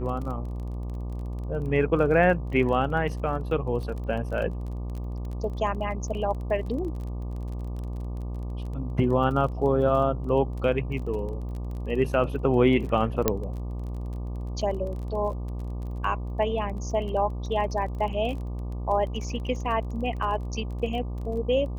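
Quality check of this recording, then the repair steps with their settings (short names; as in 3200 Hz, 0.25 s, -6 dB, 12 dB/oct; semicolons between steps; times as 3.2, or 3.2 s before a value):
buzz 60 Hz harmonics 20 -32 dBFS
crackle 24/s -35 dBFS
13.28 pop -6 dBFS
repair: de-click; de-hum 60 Hz, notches 20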